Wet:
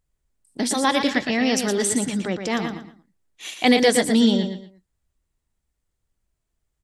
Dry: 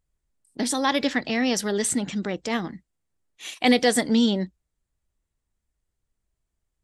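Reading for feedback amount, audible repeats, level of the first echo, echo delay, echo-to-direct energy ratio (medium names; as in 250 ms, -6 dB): 27%, 3, -7.0 dB, 116 ms, -6.5 dB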